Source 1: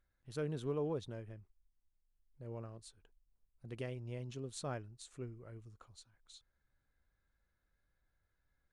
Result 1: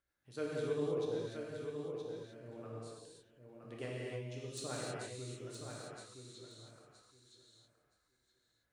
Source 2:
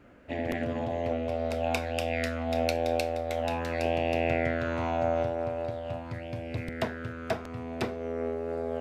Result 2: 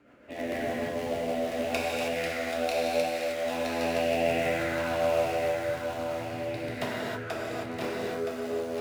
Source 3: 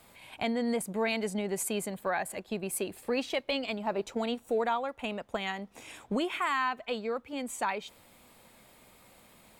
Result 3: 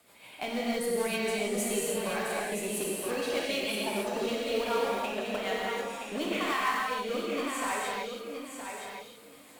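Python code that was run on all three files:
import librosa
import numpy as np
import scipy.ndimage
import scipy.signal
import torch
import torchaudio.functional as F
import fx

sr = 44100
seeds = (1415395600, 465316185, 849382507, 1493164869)

p1 = fx.highpass(x, sr, hz=320.0, slope=6)
p2 = (np.mod(10.0 ** (29.0 / 20.0) * p1 + 1.0, 2.0) - 1.0) / 10.0 ** (29.0 / 20.0)
p3 = p1 + (p2 * 10.0 ** (-11.0 / 20.0))
p4 = fx.rotary(p3, sr, hz=6.7)
p5 = fx.echo_feedback(p4, sr, ms=970, feedback_pct=18, wet_db=-6.5)
p6 = fx.rev_gated(p5, sr, seeds[0], gate_ms=340, shape='flat', drr_db=-4.5)
y = p6 * 10.0 ** (-2.0 / 20.0)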